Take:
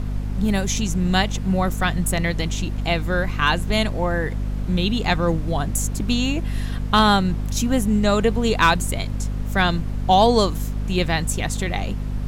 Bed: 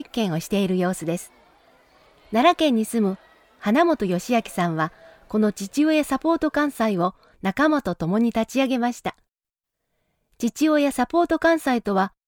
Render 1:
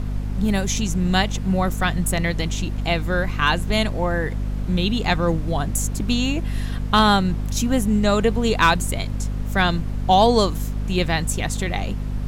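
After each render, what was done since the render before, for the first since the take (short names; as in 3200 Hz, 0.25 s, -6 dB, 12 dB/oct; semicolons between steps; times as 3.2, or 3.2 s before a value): nothing audible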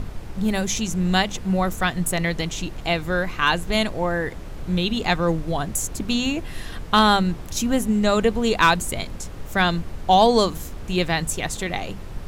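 notches 50/100/150/200/250 Hz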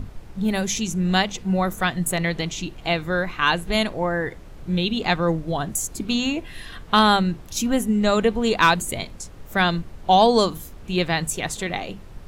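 noise print and reduce 7 dB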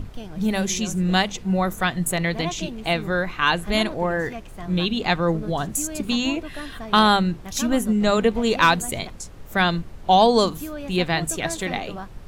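add bed -15 dB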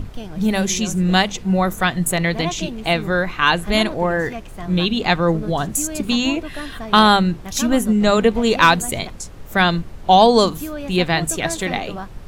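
gain +4 dB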